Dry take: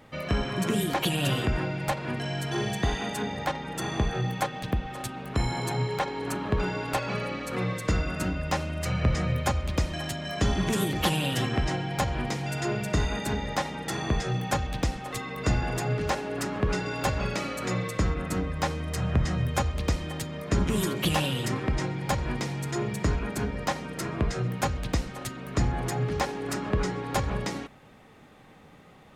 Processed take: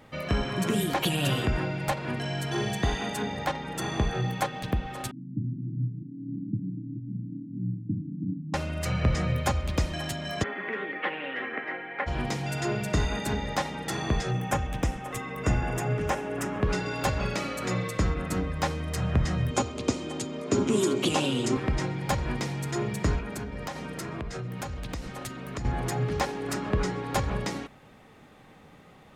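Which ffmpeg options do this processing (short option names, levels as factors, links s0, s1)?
-filter_complex "[0:a]asettb=1/sr,asplit=3[s0][s1][s2];[s0]atrim=end=5.114[s3];[s1]atrim=start=5.11:end=8.54,asetpts=PTS-STARTPTS,afade=t=in:d=0.004:c=qsin,afade=t=out:st=3.426:d=0.004:c=qsin,asuperpass=centerf=180:order=20:qfactor=0.81[s4];[s2]atrim=start=8.536[s5];[s3][s4]acrossfade=d=0.004:c1=hsin:c2=qsin[s6];[s6][s5]acrossfade=d=0.004:c1=qsin:c2=hsin,asplit=3[s7][s8][s9];[s7]afade=t=out:st=10.42:d=0.02[s10];[s8]highpass=f=320:w=0.5412,highpass=f=320:w=1.3066,equalizer=f=350:t=q:w=4:g=-8,equalizer=f=680:t=q:w=4:g=-8,equalizer=f=960:t=q:w=4:g=-6,equalizer=f=2000:t=q:w=4:g=9,lowpass=f=2200:w=0.5412,lowpass=f=2200:w=1.3066,afade=t=in:st=10.42:d=0.02,afade=t=out:st=12.06:d=0.02[s11];[s9]afade=t=in:st=12.06:d=0.02[s12];[s10][s11][s12]amix=inputs=3:normalize=0,asettb=1/sr,asplit=3[s13][s14][s15];[s13]atrim=end=14.314[s16];[s14]atrim=start=14.31:end=16.63,asetpts=PTS-STARTPTS,afade=t=in:d=0.004:c=qsin,afade=t=out:st=2.316:d=0.004:c=qsin,equalizer=f=4300:t=o:w=0.43:g=-13.5[s17];[s15]atrim=start=16.626[s18];[s16][s17]acrossfade=d=0.004:c1=hsin:c2=qsin[s19];[s19][s18]acrossfade=d=0.004:c1=qsin:c2=hsin,asettb=1/sr,asplit=3[s20][s21][s22];[s20]atrim=end=19.514[s23];[s21]atrim=start=19.51:end=21.57,asetpts=PTS-STARTPTS,afade=t=in:d=0.004:c=qsin,afade=t=out:st=2.056:d=0.004:c=qsin,highpass=f=110:w=0.5412,highpass=f=110:w=1.3066,equalizer=f=170:t=q:w=4:g=-10,equalizer=f=250:t=q:w=4:g=9,equalizer=f=390:t=q:w=4:g=8,equalizer=f=1800:t=q:w=4:g=-7,equalizer=f=6900:t=q:w=4:g=6,lowpass=f=9600:w=0.5412,lowpass=f=9600:w=1.3066[s24];[s22]atrim=start=21.566[s25];[s23][s24]acrossfade=d=0.004:c1=hsin:c2=qsin[s26];[s26][s25]acrossfade=d=0.004:c1=qsin:c2=hsin,asettb=1/sr,asplit=3[s27][s28][s29];[s27]atrim=end=23.194[s30];[s28]atrim=start=23.19:end=25.65,asetpts=PTS-STARTPTS,afade=t=in:d=0.004:c=qsin,afade=t=out:st=2.456:d=0.004:c=qsin,acompressor=threshold=0.0282:ratio=6:attack=3.2:release=140:knee=1:detection=peak[s31];[s29]atrim=start=25.646[s32];[s30][s31]acrossfade=d=0.004:c1=hsin:c2=qsin[s33];[s33][s32]acrossfade=d=0.004:c1=qsin:c2=hsin"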